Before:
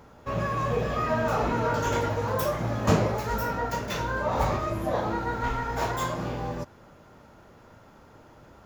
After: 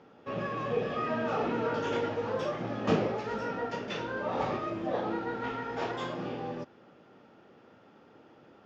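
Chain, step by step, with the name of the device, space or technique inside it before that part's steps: kitchen radio (speaker cabinet 230–4400 Hz, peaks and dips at 620 Hz -6 dB, 1000 Hz -10 dB, 1500 Hz -5 dB, 2100 Hz -5 dB, 4100 Hz -7 dB)

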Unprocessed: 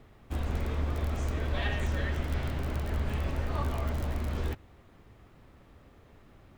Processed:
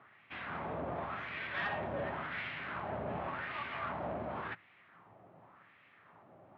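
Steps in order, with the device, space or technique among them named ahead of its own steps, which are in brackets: wah-wah guitar rig (wah 0.9 Hz 610–2300 Hz, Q 2.2; tube stage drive 40 dB, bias 0.45; speaker cabinet 94–3500 Hz, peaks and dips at 110 Hz +10 dB, 170 Hz +10 dB, 470 Hz -5 dB); gain +10 dB

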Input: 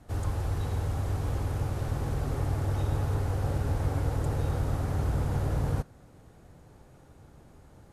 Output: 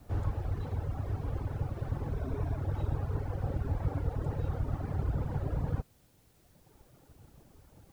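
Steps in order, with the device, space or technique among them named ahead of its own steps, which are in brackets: reverb removal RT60 2 s; 2.14–2.56 ripple EQ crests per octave 1.6, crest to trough 9 dB; cassette deck with a dirty head (tape spacing loss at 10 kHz 23 dB; wow and flutter; white noise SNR 36 dB)

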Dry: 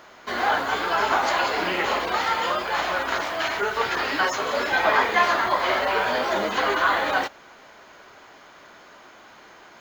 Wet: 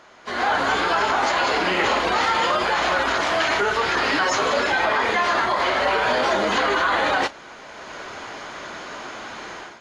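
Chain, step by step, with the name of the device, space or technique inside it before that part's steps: low-bitrate web radio (AGC gain up to 15 dB; limiter -10 dBFS, peak gain reduction 9 dB; gain -1.5 dB; AAC 48 kbps 24000 Hz)

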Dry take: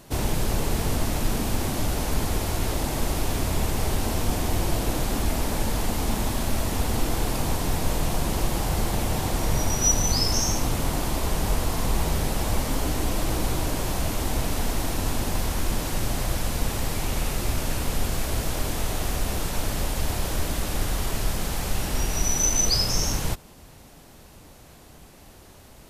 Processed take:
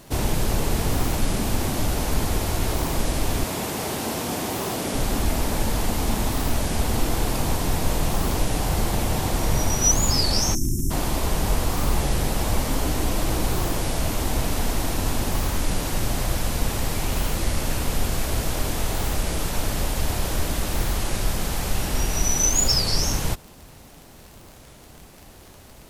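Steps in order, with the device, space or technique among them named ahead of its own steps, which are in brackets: 3.44–4.95 HPF 170 Hz 12 dB/oct; 10.55–10.91 spectral delete 400–5200 Hz; warped LP (record warp 33 1/3 rpm, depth 250 cents; crackle 44/s -36 dBFS; white noise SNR 45 dB); gain +2 dB

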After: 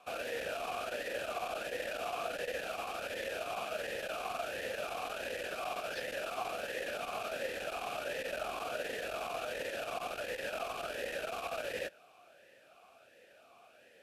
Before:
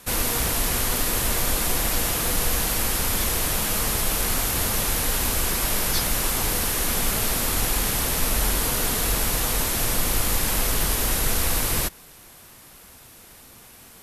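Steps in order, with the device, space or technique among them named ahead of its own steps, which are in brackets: talk box (tube stage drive 20 dB, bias 0.55; vowel sweep a-e 1.4 Hz); gain +5.5 dB

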